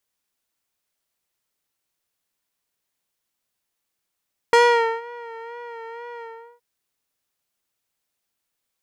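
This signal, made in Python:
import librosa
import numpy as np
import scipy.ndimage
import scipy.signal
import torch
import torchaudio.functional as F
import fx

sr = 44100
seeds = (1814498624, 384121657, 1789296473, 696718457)

y = fx.sub_patch_vibrato(sr, seeds[0], note=82, wave='triangle', wave2='sine', interval_st=12, detune_cents=16, level2_db=-8, sub_db=-2.0, noise_db=-19.5, kind='lowpass', cutoff_hz=970.0, q=0.77, env_oct=3.0, env_decay_s=0.36, env_sustain_pct=40, attack_ms=1.0, decay_s=0.48, sustain_db=-23, release_s=0.38, note_s=1.69, lfo_hz=2.1, vibrato_cents=47)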